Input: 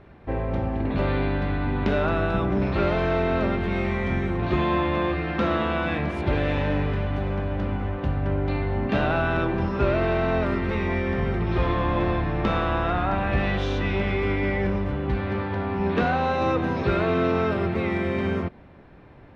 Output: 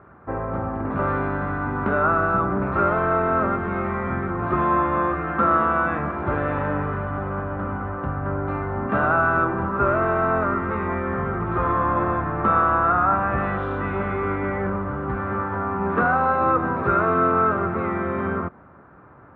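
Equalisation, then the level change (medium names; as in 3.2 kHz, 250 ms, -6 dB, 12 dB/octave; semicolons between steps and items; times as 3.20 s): high-pass 76 Hz; resonant low-pass 1.3 kHz, resonance Q 4.7; -1.0 dB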